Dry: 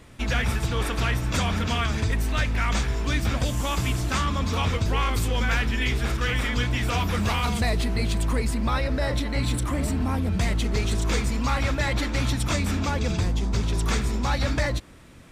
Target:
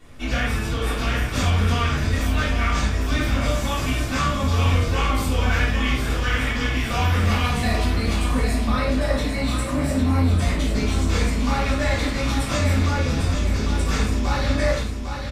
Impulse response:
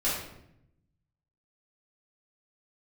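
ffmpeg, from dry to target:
-filter_complex "[0:a]aecho=1:1:802|1604|2406|3208|4010:0.447|0.183|0.0751|0.0308|0.0126[a];[1:a]atrim=start_sample=2205,afade=t=out:st=0.18:d=0.01,atrim=end_sample=8379[b];[a][b]afir=irnorm=-1:irlink=0,volume=-7dB"

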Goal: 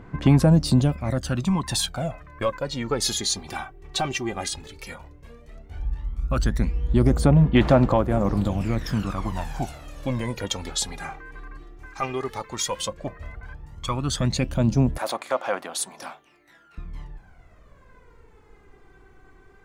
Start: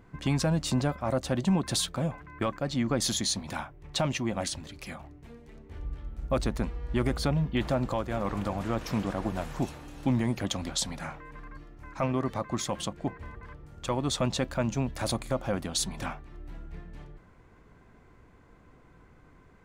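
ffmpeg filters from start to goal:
-filter_complex "[0:a]aphaser=in_gain=1:out_gain=1:delay=2.6:decay=0.68:speed=0.13:type=sinusoidal,asettb=1/sr,asplit=3[a][b][c];[a]atrim=end=11.864[d];[b]atrim=start=11.86:end=12.88,asetpts=PTS-STARTPTS,afade=t=in:d=0.004:c=qsin,afade=t=out:st=1.016:d=0.004:c=qsin,tiltshelf=f=1.3k:g=-4[e];[c]atrim=start=12.876[f];[d][e]acrossfade=d=0.004:c1=hsin:c2=qsin[g];[g][f]acrossfade=d=0.004:c1=qsin:c2=hsin,asettb=1/sr,asplit=3[h][i][j];[h]atrim=end=14.984[k];[i]atrim=start=14.98:end=16.78,asetpts=PTS-STARTPTS,afade=t=in:d=0.004:c=qsin,afade=t=out:st=1.796:d=0.004:c=qsin,highpass=710[l];[j]atrim=start=16.776[m];[k][l]acrossfade=d=0.004:c1=hsin:c2=qsin[n];[n][m]acrossfade=d=0.004:c1=qsin:c2=hsin,volume=1.5dB"

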